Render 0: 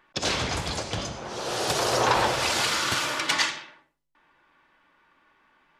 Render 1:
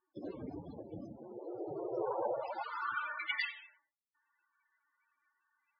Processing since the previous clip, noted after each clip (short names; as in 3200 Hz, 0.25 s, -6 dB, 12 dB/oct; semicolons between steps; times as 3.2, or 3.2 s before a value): loudest bins only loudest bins 16; band-pass sweep 300 Hz -> 2600 Hz, 1.9–3.46; gain -2.5 dB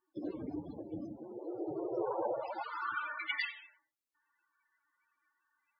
bell 310 Hz +8.5 dB 0.27 oct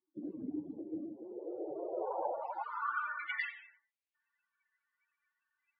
band-pass sweep 220 Hz -> 2500 Hz, 0.26–4.13; gain +3 dB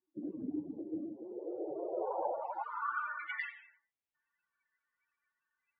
LPF 1700 Hz 6 dB/oct; gain +1.5 dB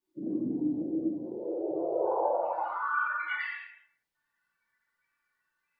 reverb, pre-delay 5 ms, DRR -5.5 dB